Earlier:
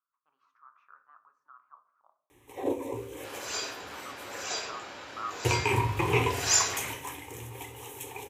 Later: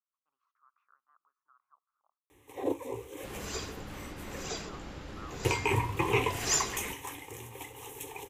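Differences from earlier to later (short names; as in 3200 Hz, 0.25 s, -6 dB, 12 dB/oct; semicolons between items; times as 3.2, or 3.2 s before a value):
speech -10.0 dB; second sound: remove HPF 630 Hz 12 dB/oct; reverb: off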